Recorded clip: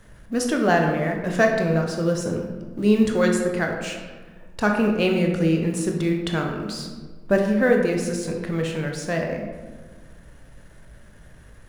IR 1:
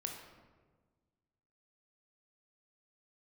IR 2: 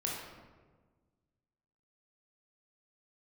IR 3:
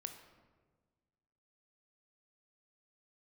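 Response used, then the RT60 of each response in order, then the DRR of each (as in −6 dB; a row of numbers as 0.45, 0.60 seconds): 1; 1.4, 1.4, 1.5 seconds; 1.5, −3.5, 6.0 decibels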